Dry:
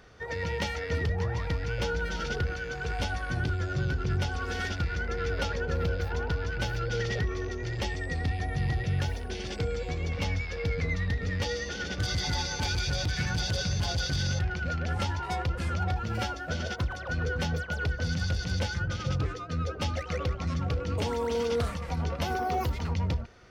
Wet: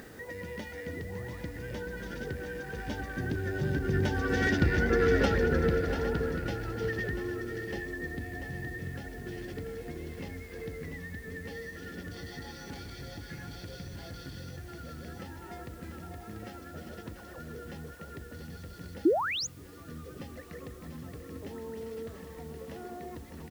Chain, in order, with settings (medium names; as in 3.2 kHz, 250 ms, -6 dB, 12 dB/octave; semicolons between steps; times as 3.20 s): Doppler pass-by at 4.85 s, 14 m/s, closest 7.8 m; peaking EQ 1.8 kHz +12.5 dB 0.24 oct; multi-tap echo 199/690/808 ms -20/-9/-15.5 dB; painted sound rise, 19.05–19.47 s, 290–7200 Hz -33 dBFS; upward compressor, threshold -39 dBFS; word length cut 10-bit, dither triangular; peaking EQ 290 Hz +14.5 dB 1.8 oct